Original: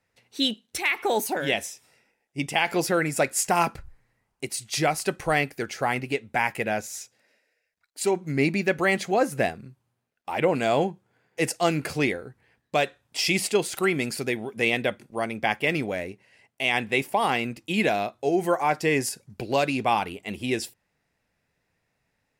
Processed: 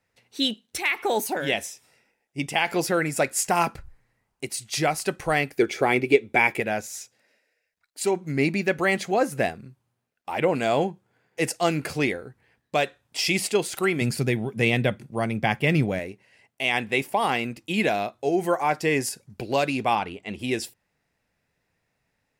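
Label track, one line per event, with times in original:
5.590000	6.600000	hollow resonant body resonances 370/2,300/3,400 Hz, height 13 dB, ringing for 20 ms
14.010000	15.990000	parametric band 130 Hz +13 dB 1.4 octaves
19.950000	20.390000	high-frequency loss of the air 67 metres

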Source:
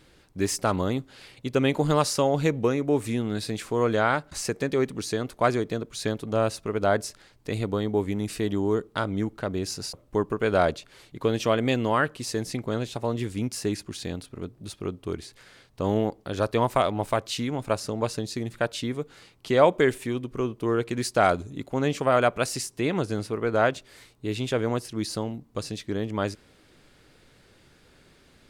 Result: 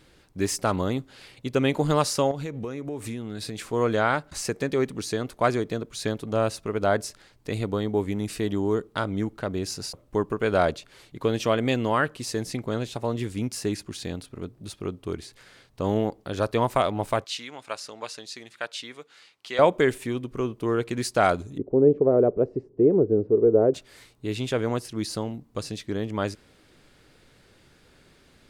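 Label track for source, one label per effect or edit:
2.310000	3.730000	downward compressor, threshold −29 dBFS
17.240000	19.590000	resonant band-pass 3,200 Hz, Q 0.51
21.580000	23.740000	low-pass with resonance 420 Hz, resonance Q 4.1

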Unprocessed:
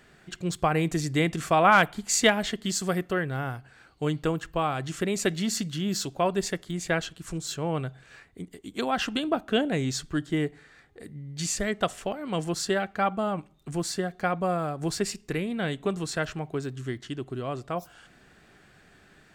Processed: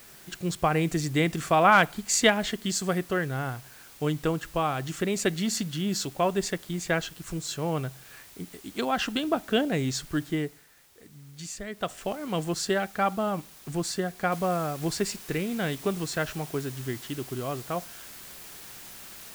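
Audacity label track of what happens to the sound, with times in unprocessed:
10.240000	12.110000	duck −9 dB, fades 0.41 s
14.320000	14.320000	noise floor change −51 dB −45 dB

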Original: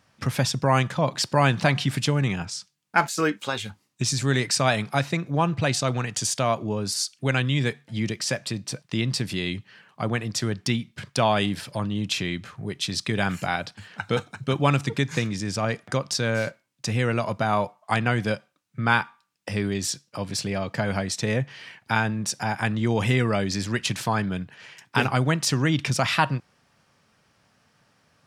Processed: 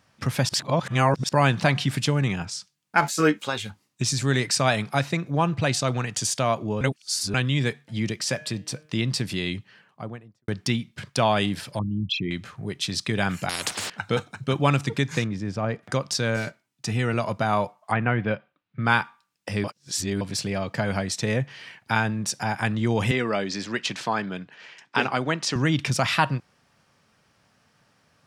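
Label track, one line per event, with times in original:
0.490000	1.290000	reverse
3.010000	3.410000	double-tracking delay 13 ms −2.5 dB
6.810000	7.340000	reverse
8.230000	8.990000	hum removal 153.3 Hz, notches 22
9.520000	10.480000	fade out and dull
11.790000	12.310000	spectral envelope exaggerated exponent 3
13.490000	13.900000	every bin compressed towards the loudest bin 10 to 1
15.240000	15.830000	low-pass filter 1,200 Hz 6 dB per octave
16.360000	17.140000	notch comb filter 540 Hz
17.910000	18.830000	low-pass filter 2,200 Hz → 4,000 Hz 24 dB per octave
19.640000	20.210000	reverse
23.110000	25.560000	band-pass filter 230–6,000 Hz

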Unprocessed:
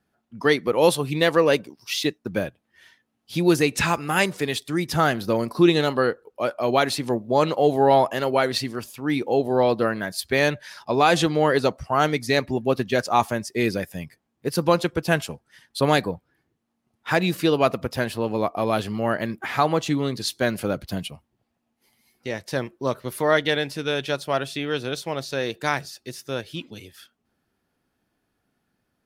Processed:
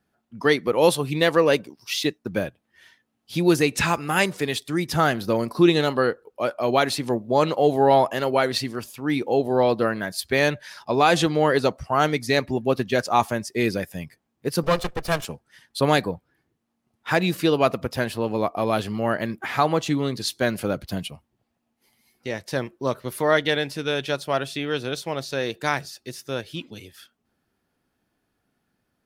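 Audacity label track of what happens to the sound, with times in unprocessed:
14.630000	15.250000	lower of the sound and its delayed copy delay 1.7 ms

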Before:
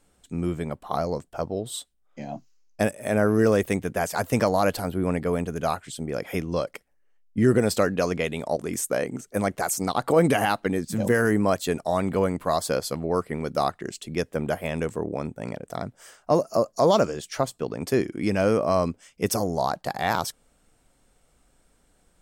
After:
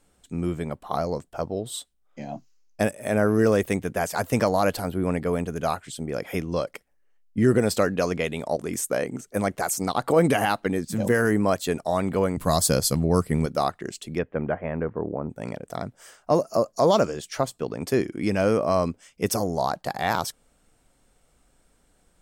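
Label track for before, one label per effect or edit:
12.370000	13.460000	bass and treble bass +12 dB, treble +11 dB
14.170000	15.290000	low-pass filter 2,800 Hz → 1,200 Hz 24 dB per octave

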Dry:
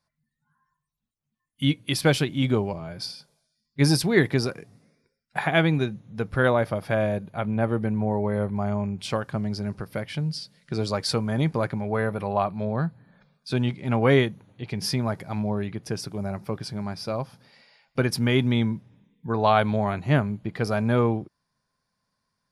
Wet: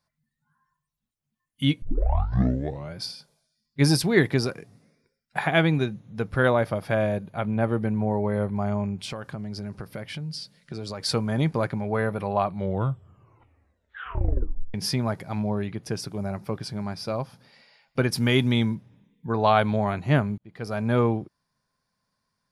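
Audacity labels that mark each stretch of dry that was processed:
1.820000	1.820000	tape start 1.13 s
9.030000	11.050000	downward compressor, threshold −30 dBFS
12.460000	12.460000	tape stop 2.28 s
18.160000	18.750000	high-shelf EQ 3,900 Hz +8 dB
20.380000	20.980000	fade in

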